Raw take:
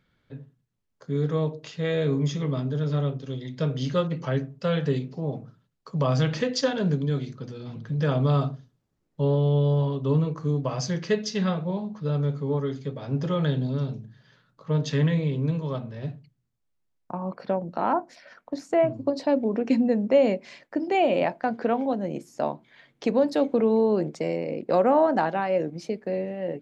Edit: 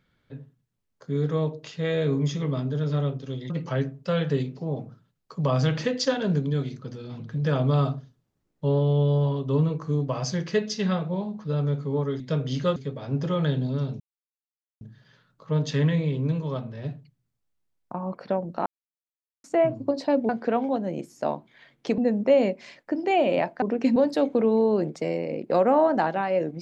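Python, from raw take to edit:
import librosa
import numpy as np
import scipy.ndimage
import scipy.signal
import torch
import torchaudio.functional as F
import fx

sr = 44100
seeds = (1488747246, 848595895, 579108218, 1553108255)

y = fx.edit(x, sr, fx.move(start_s=3.5, length_s=0.56, to_s=12.76),
    fx.insert_silence(at_s=14.0, length_s=0.81),
    fx.silence(start_s=17.85, length_s=0.78),
    fx.swap(start_s=19.48, length_s=0.34, other_s=21.46, other_length_s=1.69), tone=tone)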